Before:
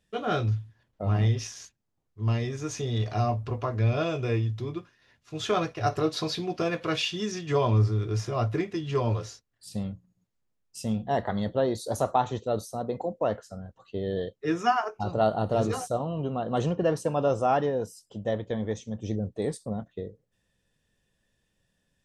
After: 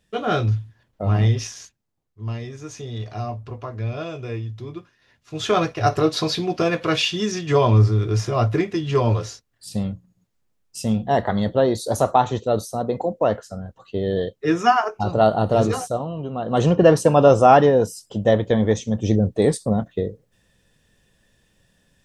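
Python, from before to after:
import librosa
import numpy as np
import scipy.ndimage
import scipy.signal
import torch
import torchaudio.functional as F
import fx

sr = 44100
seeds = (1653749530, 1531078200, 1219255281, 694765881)

y = fx.gain(x, sr, db=fx.line((1.42, 6.0), (2.29, -2.5), (4.44, -2.5), (5.63, 7.5), (15.63, 7.5), (16.27, 0.5), (16.76, 12.0)))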